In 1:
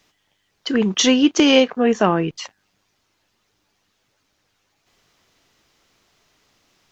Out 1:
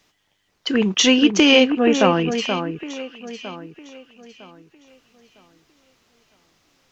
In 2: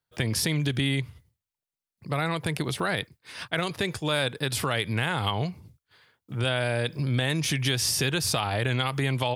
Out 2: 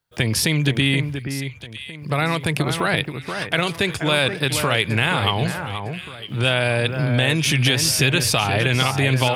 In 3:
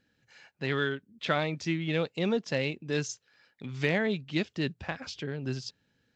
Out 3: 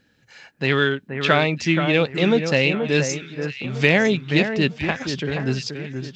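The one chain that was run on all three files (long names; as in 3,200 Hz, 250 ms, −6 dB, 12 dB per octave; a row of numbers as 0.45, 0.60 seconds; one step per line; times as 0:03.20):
dynamic equaliser 2,600 Hz, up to +6 dB, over −43 dBFS, Q 3.2
on a send: delay that swaps between a low-pass and a high-pass 478 ms, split 2,000 Hz, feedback 55%, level −7 dB
on the sum: normalise the peak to −1.5 dBFS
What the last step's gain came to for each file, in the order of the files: −0.5, +6.0, +10.0 decibels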